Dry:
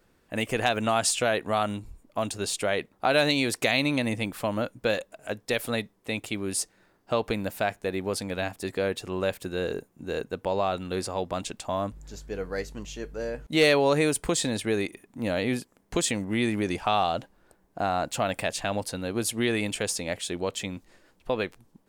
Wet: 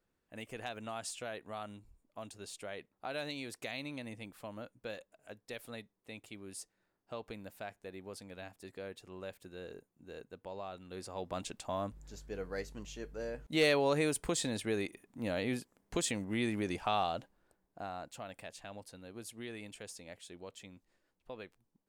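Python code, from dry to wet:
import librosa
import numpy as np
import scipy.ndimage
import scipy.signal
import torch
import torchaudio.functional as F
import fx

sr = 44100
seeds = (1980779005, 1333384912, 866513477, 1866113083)

y = fx.gain(x, sr, db=fx.line((10.84, -17.5), (11.37, -8.0), (17.01, -8.0), (18.24, -19.0)))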